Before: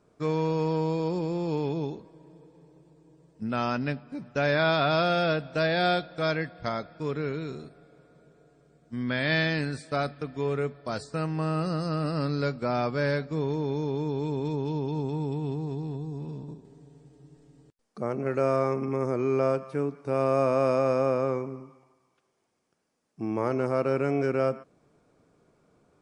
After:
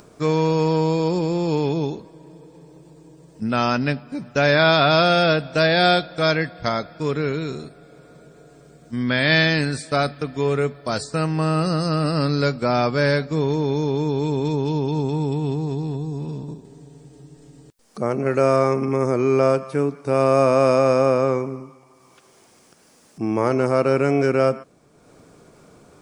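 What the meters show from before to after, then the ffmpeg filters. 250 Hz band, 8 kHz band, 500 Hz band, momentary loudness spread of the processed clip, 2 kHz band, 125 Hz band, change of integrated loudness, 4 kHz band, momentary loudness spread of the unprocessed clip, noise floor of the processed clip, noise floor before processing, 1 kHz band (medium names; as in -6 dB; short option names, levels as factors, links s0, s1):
+7.5 dB, no reading, +7.5 dB, 11 LU, +8.5 dB, +7.5 dB, +8.0 dB, +11.0 dB, 12 LU, -54 dBFS, -71 dBFS, +8.0 dB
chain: -af "highshelf=f=4400:g=8,acompressor=mode=upward:threshold=0.00398:ratio=2.5,volume=2.37"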